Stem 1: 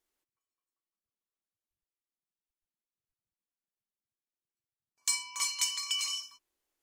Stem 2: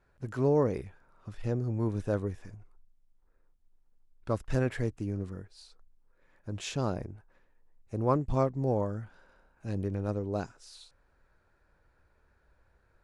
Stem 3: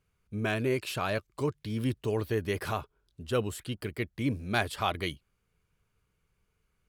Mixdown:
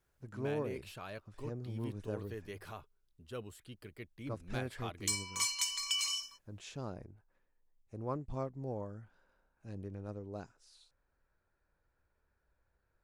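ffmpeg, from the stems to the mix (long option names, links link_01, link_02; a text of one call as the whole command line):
ffmpeg -i stem1.wav -i stem2.wav -i stem3.wav -filter_complex "[0:a]alimiter=limit=-19dB:level=0:latency=1:release=256,volume=-1dB[link_01];[1:a]volume=-11.5dB[link_02];[2:a]volume=-15dB[link_03];[link_01][link_02][link_03]amix=inputs=3:normalize=0" out.wav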